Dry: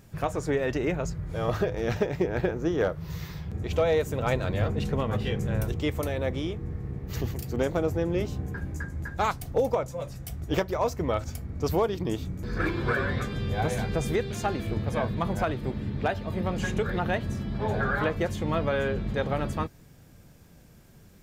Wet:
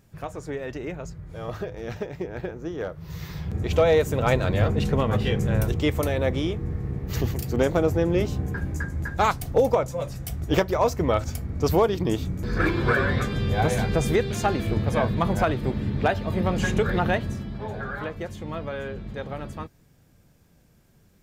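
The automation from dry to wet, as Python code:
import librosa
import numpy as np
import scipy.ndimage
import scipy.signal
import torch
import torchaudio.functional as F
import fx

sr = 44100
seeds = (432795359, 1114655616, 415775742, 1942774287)

y = fx.gain(x, sr, db=fx.line((2.86, -5.5), (3.45, 5.0), (17.07, 5.0), (17.72, -5.5)))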